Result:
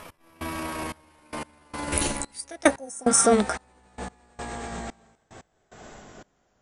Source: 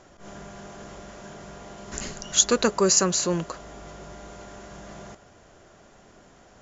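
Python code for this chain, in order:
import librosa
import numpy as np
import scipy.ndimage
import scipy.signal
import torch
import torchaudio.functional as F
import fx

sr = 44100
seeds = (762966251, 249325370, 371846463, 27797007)

p1 = fx.pitch_glide(x, sr, semitones=9.0, runs='ending unshifted')
p2 = fx.rider(p1, sr, range_db=5, speed_s=0.5)
p3 = p1 + (p2 * 10.0 ** (0.0 / 20.0))
p4 = fx.spec_repair(p3, sr, seeds[0], start_s=2.77, length_s=0.47, low_hz=1000.0, high_hz=5300.0, source='both')
p5 = fx.step_gate(p4, sr, bpm=147, pattern='x...xxxxx....', floor_db=-24.0, edge_ms=4.5)
y = p5 * 10.0 ** (1.5 / 20.0)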